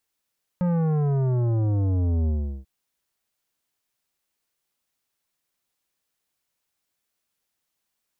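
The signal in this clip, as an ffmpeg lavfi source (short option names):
-f lavfi -i "aevalsrc='0.0891*clip((2.04-t)/0.38,0,1)*tanh(3.98*sin(2*PI*180*2.04/log(65/180)*(exp(log(65/180)*t/2.04)-1)))/tanh(3.98)':d=2.04:s=44100"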